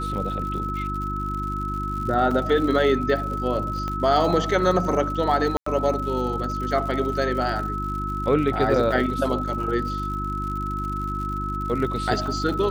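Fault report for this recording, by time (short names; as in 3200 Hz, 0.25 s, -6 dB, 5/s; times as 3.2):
crackle 110/s -32 dBFS
hum 50 Hz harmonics 7 -30 dBFS
tone 1300 Hz -28 dBFS
2.31 gap 3.8 ms
3.88 pop -17 dBFS
5.57–5.66 gap 94 ms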